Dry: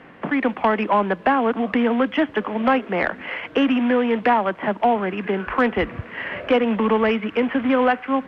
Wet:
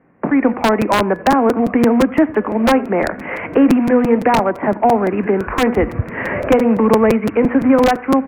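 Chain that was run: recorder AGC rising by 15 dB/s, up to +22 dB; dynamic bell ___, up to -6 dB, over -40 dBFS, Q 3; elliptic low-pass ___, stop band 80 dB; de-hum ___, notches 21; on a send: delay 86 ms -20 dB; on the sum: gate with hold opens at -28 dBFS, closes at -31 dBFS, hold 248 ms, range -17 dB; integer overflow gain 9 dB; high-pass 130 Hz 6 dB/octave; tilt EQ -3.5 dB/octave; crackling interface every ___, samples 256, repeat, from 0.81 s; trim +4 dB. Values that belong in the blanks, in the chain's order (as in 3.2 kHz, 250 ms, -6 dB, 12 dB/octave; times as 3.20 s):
180 Hz, 2.4 kHz, 243.4 Hz, 0.17 s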